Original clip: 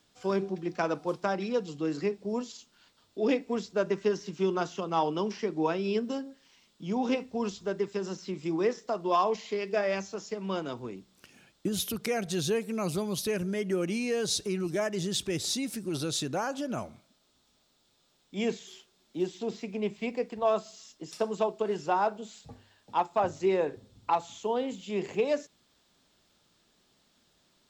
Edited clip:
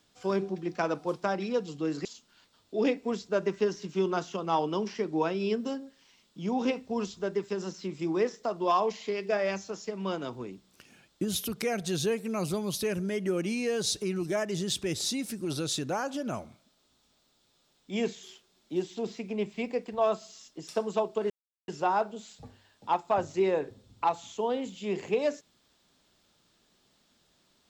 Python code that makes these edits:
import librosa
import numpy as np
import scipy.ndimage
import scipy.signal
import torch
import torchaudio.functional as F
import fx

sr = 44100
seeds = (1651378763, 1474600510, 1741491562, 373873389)

y = fx.edit(x, sr, fx.cut(start_s=2.05, length_s=0.44),
    fx.insert_silence(at_s=21.74, length_s=0.38), tone=tone)